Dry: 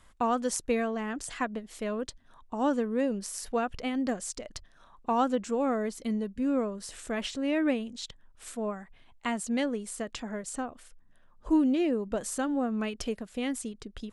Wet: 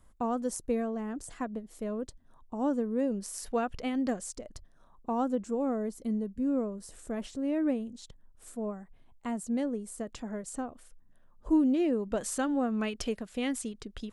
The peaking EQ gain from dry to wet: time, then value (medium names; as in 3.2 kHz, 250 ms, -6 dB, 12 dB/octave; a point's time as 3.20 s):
peaking EQ 2.8 kHz 2.9 oct
2.82 s -13.5 dB
3.46 s -3.5 dB
4.11 s -3.5 dB
4.54 s -14 dB
9.80 s -14 dB
10.27 s -8 dB
11.62 s -8 dB
12.19 s +0.5 dB